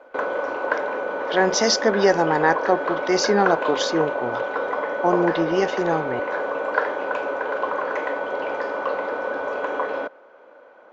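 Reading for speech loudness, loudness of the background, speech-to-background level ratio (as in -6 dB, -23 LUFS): -22.0 LUFS, -26.0 LUFS, 4.0 dB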